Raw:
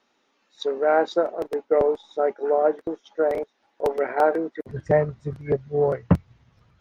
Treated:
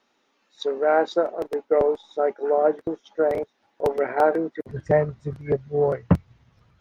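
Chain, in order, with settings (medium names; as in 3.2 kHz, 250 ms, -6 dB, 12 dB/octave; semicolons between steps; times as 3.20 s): 2.57–4.64 s: peaking EQ 120 Hz +7.5 dB 1.5 oct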